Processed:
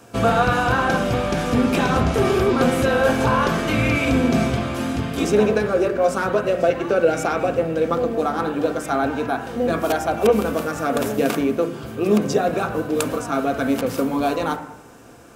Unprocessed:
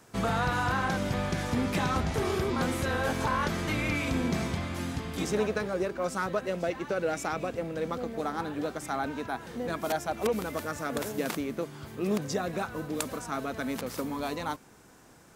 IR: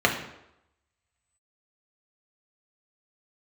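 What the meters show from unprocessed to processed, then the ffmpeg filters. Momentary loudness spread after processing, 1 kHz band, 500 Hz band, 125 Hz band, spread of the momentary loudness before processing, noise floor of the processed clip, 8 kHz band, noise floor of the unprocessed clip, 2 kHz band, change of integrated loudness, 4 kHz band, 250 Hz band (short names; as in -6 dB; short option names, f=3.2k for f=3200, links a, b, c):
6 LU, +10.0 dB, +12.5 dB, +8.5 dB, 6 LU, -39 dBFS, +6.5 dB, -56 dBFS, +9.0 dB, +11.0 dB, +8.0 dB, +11.0 dB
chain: -filter_complex "[0:a]asplit=2[a][b];[1:a]atrim=start_sample=2205,lowpass=2.5k[c];[b][c]afir=irnorm=-1:irlink=0,volume=-15.5dB[d];[a][d]amix=inputs=2:normalize=0,volume=6.5dB"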